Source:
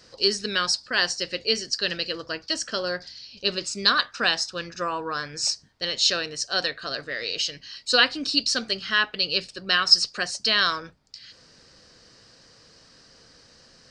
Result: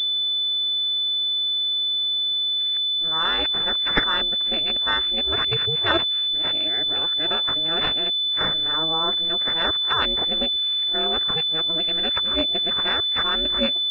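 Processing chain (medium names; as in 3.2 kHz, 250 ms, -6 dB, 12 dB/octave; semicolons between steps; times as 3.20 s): reverse the whole clip; ring modulator 160 Hz; class-D stage that switches slowly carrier 3.5 kHz; trim +4 dB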